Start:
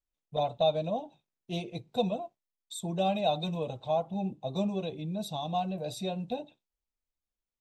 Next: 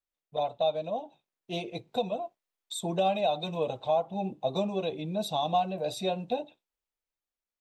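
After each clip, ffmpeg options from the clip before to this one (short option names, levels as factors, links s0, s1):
-af "dynaudnorm=f=290:g=11:m=2.37,alimiter=limit=0.158:level=0:latency=1:release=493,bass=f=250:g=-10,treble=f=4000:g=-5"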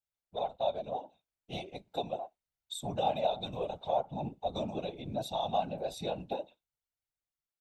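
-af "aecho=1:1:1.4:0.31,afftfilt=real='hypot(re,im)*cos(2*PI*random(0))':imag='hypot(re,im)*sin(2*PI*random(1))':win_size=512:overlap=0.75"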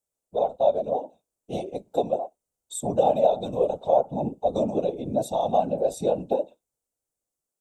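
-af "equalizer=f=250:t=o:w=1:g=6,equalizer=f=500:t=o:w=1:g=10,equalizer=f=2000:t=o:w=1:g=-9,equalizer=f=4000:t=o:w=1:g=-7,equalizer=f=8000:t=o:w=1:g=10,volume=1.58"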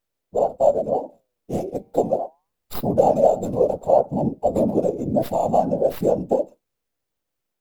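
-filter_complex "[0:a]acrossover=split=440|2300[s0][s1][s2];[s1]flanger=delay=0.5:depth=9.5:regen=-88:speed=0.3:shape=sinusoidal[s3];[s2]aeval=exprs='abs(val(0))':c=same[s4];[s0][s3][s4]amix=inputs=3:normalize=0,volume=2.24"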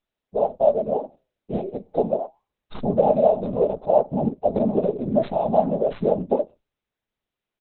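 -af "aecho=1:1:4.8:0.36,volume=0.841" -ar 48000 -c:a libopus -b:a 8k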